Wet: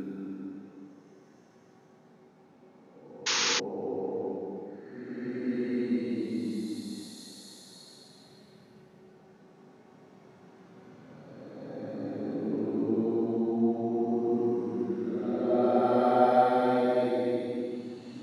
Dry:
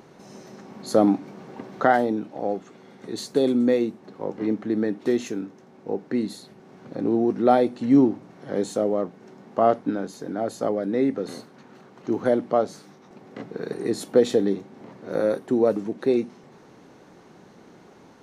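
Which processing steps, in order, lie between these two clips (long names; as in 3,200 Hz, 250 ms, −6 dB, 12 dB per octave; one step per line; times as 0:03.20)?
extreme stretch with random phases 7.7×, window 0.25 s, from 0:05.41
sound drawn into the spectrogram noise, 0:03.26–0:03.60, 830–6,800 Hz −21 dBFS
level −6.5 dB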